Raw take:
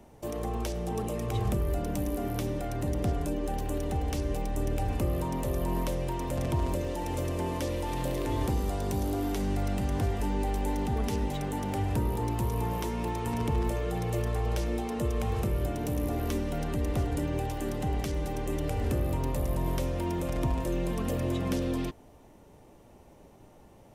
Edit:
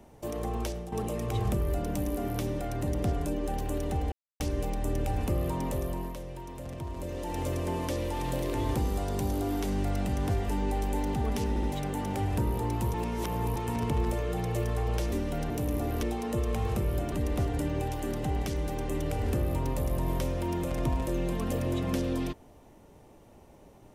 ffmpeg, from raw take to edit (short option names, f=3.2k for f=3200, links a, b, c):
-filter_complex "[0:a]asplit=13[a][b][c][d][e][f][g][h][i][j][k][l][m];[a]atrim=end=0.92,asetpts=PTS-STARTPTS,afade=t=out:st=0.66:d=0.26:silence=0.298538[n];[b]atrim=start=0.92:end=4.12,asetpts=PTS-STARTPTS,afade=t=in:d=0.004:c=hsin:silence=0.298538,afade=t=out:st=3.196:d=0.004:c=hsin,apad=pad_dur=0.28[o];[c]atrim=start=4.12:end=5.86,asetpts=PTS-STARTPTS,afade=t=in:d=0.004:c=hsin,afade=t=out:st=1.3:d=0.44:silence=0.354813[p];[d]atrim=start=5.86:end=6.66,asetpts=PTS-STARTPTS,volume=-9dB[q];[e]atrim=start=6.66:end=11.282,asetpts=PTS-STARTPTS,afade=t=in:d=0.44:silence=0.354813[r];[f]atrim=start=11.208:end=11.282[s];[g]atrim=start=11.208:end=12.522[t];[h]atrim=start=12.518:end=13.142,asetpts=PTS-STARTPTS,areverse[u];[i]atrim=start=13.138:end=14.702[v];[j]atrim=start=16.318:end=16.702[w];[k]atrim=start=15.788:end=16.322[x];[l]atrim=start=14.698:end=15.792[y];[m]atrim=start=16.698[z];[n][o][p][q][r]concat=n=5:v=0:a=1[aa];[aa][s]acrossfade=d=0.004:c1=hsin:c2=hsin[ab];[ab][t]acrossfade=d=0.004:c1=hsin:c2=hsin[ac];[ac][u]acrossfade=d=0.004:c1=hsin:c2=hsin[ad];[ad][v]acrossfade=d=0.004:c1=hsin:c2=hsin[ae];[ae][w]acrossfade=d=0.004:c1=hsin:c2=hsin[af];[af][x]acrossfade=d=0.004:c1=hsin:c2=hsin[ag];[ag][y]acrossfade=d=0.004:c1=hsin:c2=hsin[ah];[ah][z]acrossfade=d=0.004:c1=hsin:c2=hsin"